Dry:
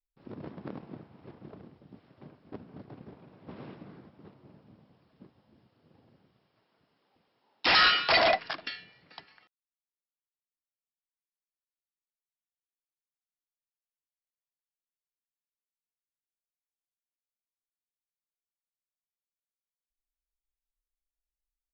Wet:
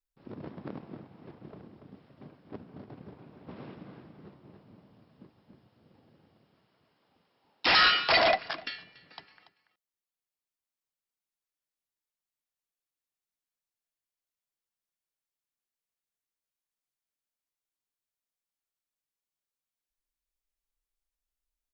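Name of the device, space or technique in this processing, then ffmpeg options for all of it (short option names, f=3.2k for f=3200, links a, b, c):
ducked delay: -filter_complex "[0:a]asplit=3[a][b][c];[b]adelay=285,volume=-4dB[d];[c]apad=whole_len=971112[e];[d][e]sidechaincompress=threshold=-47dB:ratio=5:attack=33:release=1270[f];[a][f]amix=inputs=2:normalize=0"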